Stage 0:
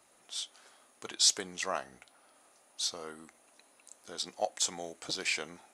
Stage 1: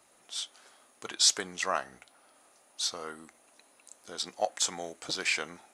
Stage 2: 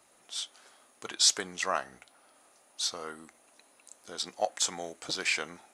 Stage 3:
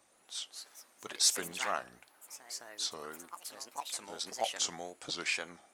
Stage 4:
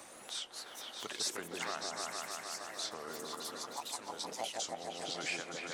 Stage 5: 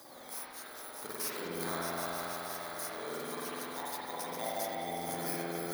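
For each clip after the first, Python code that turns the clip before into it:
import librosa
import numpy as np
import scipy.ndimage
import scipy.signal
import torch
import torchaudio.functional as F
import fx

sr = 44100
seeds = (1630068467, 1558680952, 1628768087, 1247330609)

y1 = fx.dynamic_eq(x, sr, hz=1400.0, q=1.1, threshold_db=-49.0, ratio=4.0, max_db=5)
y1 = y1 * 10.0 ** (1.5 / 20.0)
y2 = y1
y3 = fx.echo_pitch(y2, sr, ms=275, semitones=4, count=3, db_per_echo=-6.0)
y3 = fx.wow_flutter(y3, sr, seeds[0], rate_hz=2.1, depth_cents=140.0)
y3 = y3 * 10.0 ** (-4.5 / 20.0)
y4 = fx.echo_opening(y3, sr, ms=153, hz=750, octaves=1, feedback_pct=70, wet_db=0)
y4 = fx.band_squash(y4, sr, depth_pct=70)
y4 = y4 * 10.0 ** (-4.5 / 20.0)
y5 = fx.bit_reversed(y4, sr, seeds[1], block=16)
y5 = fx.rev_spring(y5, sr, rt60_s=1.6, pass_ms=(47,), chirp_ms=45, drr_db=-6.0)
y5 = y5 * 10.0 ** (-1.5 / 20.0)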